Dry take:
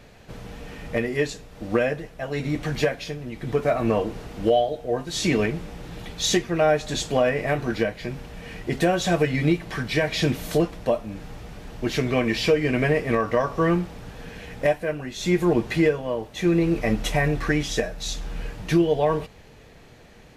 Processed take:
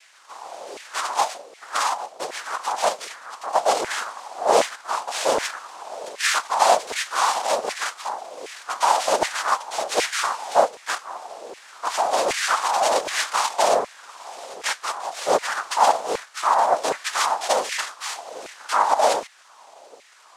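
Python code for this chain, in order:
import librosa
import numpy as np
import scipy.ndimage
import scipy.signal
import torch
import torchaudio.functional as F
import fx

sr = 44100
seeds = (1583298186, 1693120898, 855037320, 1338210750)

y = fx.noise_vocoder(x, sr, seeds[0], bands=2)
y = fx.filter_lfo_highpass(y, sr, shape='saw_down', hz=1.3, low_hz=430.0, high_hz=2100.0, q=3.1)
y = fx.dynamic_eq(y, sr, hz=390.0, q=1.2, threshold_db=-33.0, ratio=4.0, max_db=-6)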